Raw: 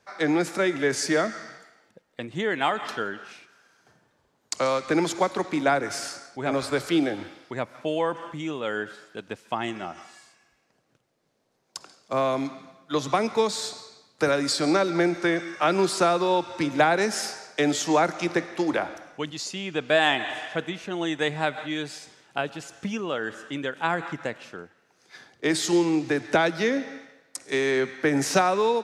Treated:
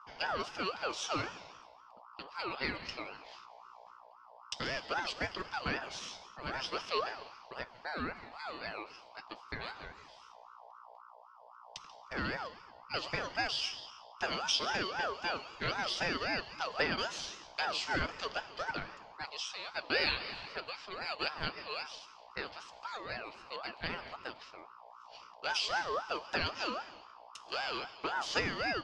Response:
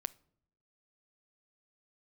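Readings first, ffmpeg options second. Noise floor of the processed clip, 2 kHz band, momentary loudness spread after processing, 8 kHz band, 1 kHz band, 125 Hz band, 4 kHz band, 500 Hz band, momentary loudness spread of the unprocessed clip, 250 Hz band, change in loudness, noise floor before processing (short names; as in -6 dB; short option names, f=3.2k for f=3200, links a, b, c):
-57 dBFS, -8.0 dB, 20 LU, -14.0 dB, -10.5 dB, -13.0 dB, -4.5 dB, -16.5 dB, 15 LU, -19.5 dB, -11.0 dB, -69 dBFS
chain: -filter_complex "[0:a]lowpass=f=4k:t=q:w=6.4,equalizer=f=2k:t=o:w=0.77:g=-3.5,aeval=exprs='val(0)+0.0112*(sin(2*PI*60*n/s)+sin(2*PI*2*60*n/s)/2+sin(2*PI*3*60*n/s)/3+sin(2*PI*4*60*n/s)/4+sin(2*PI*5*60*n/s)/5)':c=same,flanger=delay=6.1:depth=4.4:regen=-59:speed=0.42:shape=triangular[a];[1:a]atrim=start_sample=2205,asetrate=48510,aresample=44100[b];[a][b]afir=irnorm=-1:irlink=0,aeval=exprs='val(0)*sin(2*PI*980*n/s+980*0.25/3.8*sin(2*PI*3.8*n/s))':c=same,volume=-4.5dB"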